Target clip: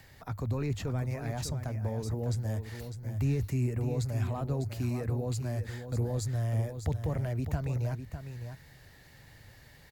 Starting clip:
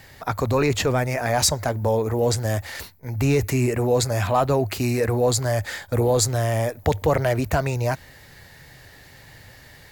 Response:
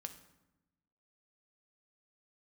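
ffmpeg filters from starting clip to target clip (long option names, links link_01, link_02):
-filter_complex "[0:a]acrossover=split=240[link_01][link_02];[link_02]acompressor=threshold=-58dB:ratio=1.5[link_03];[link_01][link_03]amix=inputs=2:normalize=0,aecho=1:1:602:0.355,volume=-6dB"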